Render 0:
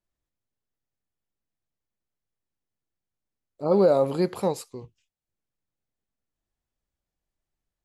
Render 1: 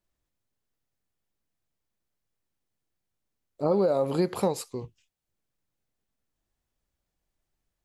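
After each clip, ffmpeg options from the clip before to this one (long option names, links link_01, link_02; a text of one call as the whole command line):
ffmpeg -i in.wav -af "acompressor=threshold=-25dB:ratio=6,volume=4dB" out.wav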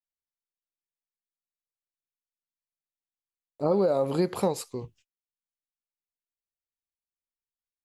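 ffmpeg -i in.wav -af "agate=range=-28dB:threshold=-57dB:ratio=16:detection=peak" out.wav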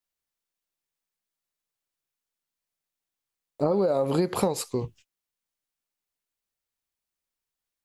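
ffmpeg -i in.wav -af "acompressor=threshold=-28dB:ratio=6,volume=7.5dB" out.wav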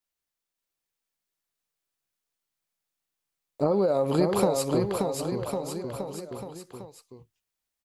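ffmpeg -i in.wav -af "aecho=1:1:580|1102|1572|1995|2375:0.631|0.398|0.251|0.158|0.1" out.wav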